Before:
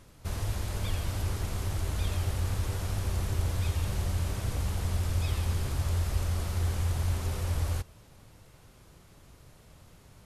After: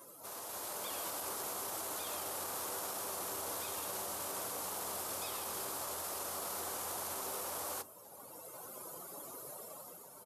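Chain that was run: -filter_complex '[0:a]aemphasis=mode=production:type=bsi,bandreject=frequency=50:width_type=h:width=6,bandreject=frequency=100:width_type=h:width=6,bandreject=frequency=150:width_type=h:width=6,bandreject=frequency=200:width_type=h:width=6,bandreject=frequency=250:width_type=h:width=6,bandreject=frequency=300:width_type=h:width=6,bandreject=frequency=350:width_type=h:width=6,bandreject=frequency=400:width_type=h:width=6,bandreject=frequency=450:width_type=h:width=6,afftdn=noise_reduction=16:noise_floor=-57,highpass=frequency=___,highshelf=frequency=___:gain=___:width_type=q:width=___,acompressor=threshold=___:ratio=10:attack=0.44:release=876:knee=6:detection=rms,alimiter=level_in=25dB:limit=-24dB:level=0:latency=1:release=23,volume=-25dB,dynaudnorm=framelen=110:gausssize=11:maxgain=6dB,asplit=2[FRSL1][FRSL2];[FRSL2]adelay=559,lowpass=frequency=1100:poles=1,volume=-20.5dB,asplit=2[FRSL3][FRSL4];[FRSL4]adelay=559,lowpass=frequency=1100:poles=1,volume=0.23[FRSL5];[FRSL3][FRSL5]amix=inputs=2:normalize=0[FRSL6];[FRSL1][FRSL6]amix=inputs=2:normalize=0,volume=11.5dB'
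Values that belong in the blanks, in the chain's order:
330, 1500, -6.5, 1.5, -45dB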